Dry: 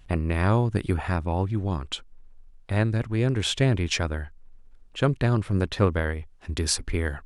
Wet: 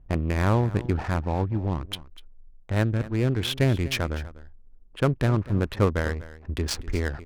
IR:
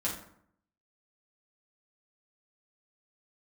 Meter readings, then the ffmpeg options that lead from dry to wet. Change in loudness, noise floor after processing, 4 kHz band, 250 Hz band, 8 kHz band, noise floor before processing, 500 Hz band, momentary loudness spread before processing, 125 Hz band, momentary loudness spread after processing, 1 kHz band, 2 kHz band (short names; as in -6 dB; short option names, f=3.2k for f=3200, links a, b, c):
-0.5 dB, -50 dBFS, -2.5 dB, 0.0 dB, -6.5 dB, -50 dBFS, 0.0 dB, 11 LU, 0.0 dB, 9 LU, 0.0 dB, -1.0 dB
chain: -filter_complex "[0:a]highshelf=f=5.5k:g=-4,adynamicsmooth=sensitivity=5.5:basefreq=610,asplit=2[a][b];[b]aecho=0:1:246:0.141[c];[a][c]amix=inputs=2:normalize=0"